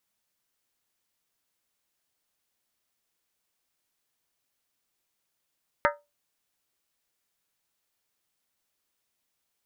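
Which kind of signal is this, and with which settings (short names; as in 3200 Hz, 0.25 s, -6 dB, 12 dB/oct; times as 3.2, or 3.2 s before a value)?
skin hit, lowest mode 583 Hz, modes 8, decay 0.23 s, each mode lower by 1 dB, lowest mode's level -20 dB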